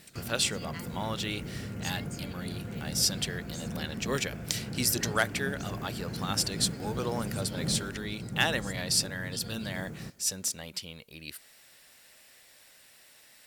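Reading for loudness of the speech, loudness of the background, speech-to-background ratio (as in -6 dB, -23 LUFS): -32.0 LUFS, -38.5 LUFS, 6.5 dB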